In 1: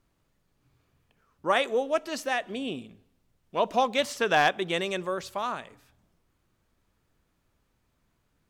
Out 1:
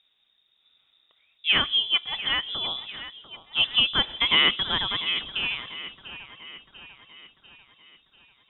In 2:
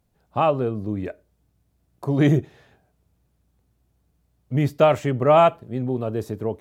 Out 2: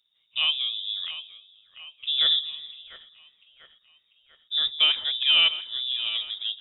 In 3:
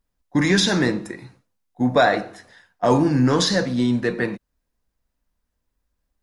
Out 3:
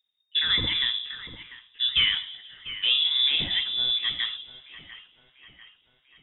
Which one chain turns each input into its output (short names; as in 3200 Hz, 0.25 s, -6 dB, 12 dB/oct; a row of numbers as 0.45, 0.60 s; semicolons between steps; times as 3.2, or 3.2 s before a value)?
split-band echo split 550 Hz, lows 0.159 s, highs 0.694 s, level -13 dB; inverted band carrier 3700 Hz; match loudness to -23 LUFS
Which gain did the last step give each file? +2.0, -5.0, -6.5 dB